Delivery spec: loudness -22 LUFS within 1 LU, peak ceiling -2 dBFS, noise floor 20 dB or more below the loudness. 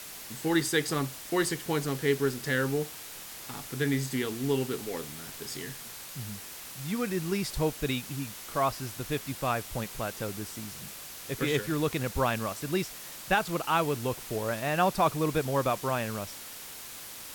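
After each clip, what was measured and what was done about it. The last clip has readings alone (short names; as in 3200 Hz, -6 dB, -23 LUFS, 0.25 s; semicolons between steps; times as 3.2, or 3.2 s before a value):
noise floor -44 dBFS; noise floor target -51 dBFS; loudness -31.0 LUFS; peak -12.0 dBFS; loudness target -22.0 LUFS
-> denoiser 7 dB, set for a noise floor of -44 dBFS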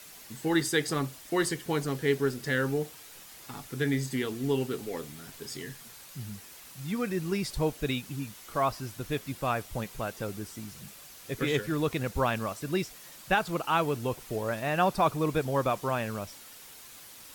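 noise floor -49 dBFS; noise floor target -51 dBFS
-> denoiser 6 dB, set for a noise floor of -49 dBFS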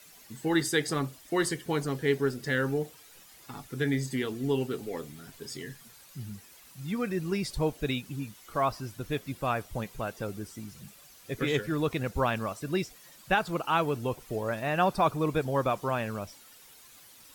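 noise floor -54 dBFS; loudness -31.0 LUFS; peak -12.0 dBFS; loudness target -22.0 LUFS
-> gain +9 dB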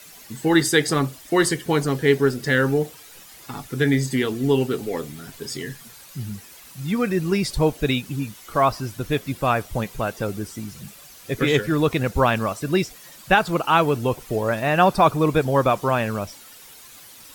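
loudness -22.0 LUFS; peak -3.0 dBFS; noise floor -45 dBFS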